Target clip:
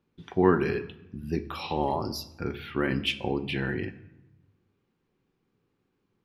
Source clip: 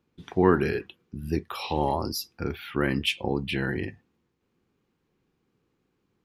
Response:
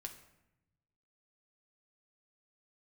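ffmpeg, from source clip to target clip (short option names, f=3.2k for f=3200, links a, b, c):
-filter_complex "[0:a]asplit=2[a][b];[1:a]atrim=start_sample=2205,lowpass=6.4k[c];[b][c]afir=irnorm=-1:irlink=0,volume=5.5dB[d];[a][d]amix=inputs=2:normalize=0,volume=-8dB"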